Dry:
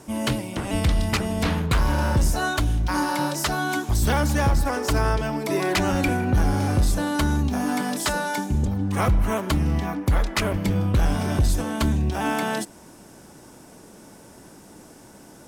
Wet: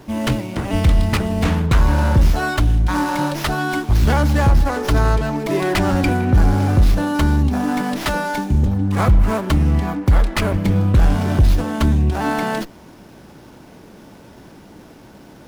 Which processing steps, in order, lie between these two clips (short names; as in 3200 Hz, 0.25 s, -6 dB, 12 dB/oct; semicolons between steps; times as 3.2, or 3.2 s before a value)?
low shelf 180 Hz +4.5 dB; running maximum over 5 samples; gain +3.5 dB